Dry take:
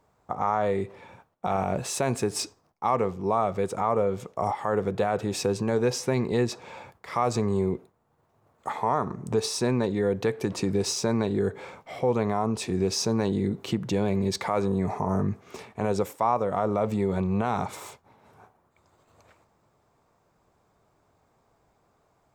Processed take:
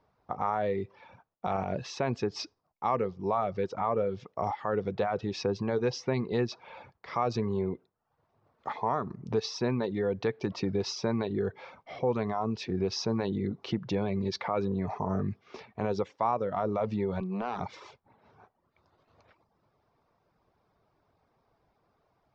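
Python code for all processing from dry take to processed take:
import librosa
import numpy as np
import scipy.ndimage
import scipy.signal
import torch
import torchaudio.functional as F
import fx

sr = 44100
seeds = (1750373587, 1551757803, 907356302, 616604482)

y = fx.chain(x, sr, fx.steep_highpass(hz=160.0, slope=48),
    fx.tube_stage(drive_db=19.0, bias=0.4), at=(17.2, 17.61))
y = fx.dereverb_blind(y, sr, rt60_s=0.55)
y = scipy.signal.sosfilt(scipy.signal.butter(8, 5600.0, 'lowpass', fs=sr, output='sos'), y)
y = y * 10.0 ** (-3.5 / 20.0)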